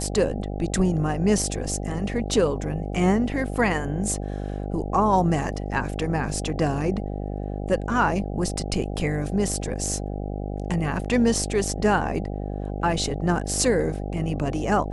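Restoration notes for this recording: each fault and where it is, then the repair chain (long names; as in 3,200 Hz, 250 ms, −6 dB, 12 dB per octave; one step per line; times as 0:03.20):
mains buzz 50 Hz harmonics 16 −30 dBFS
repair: hum removal 50 Hz, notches 16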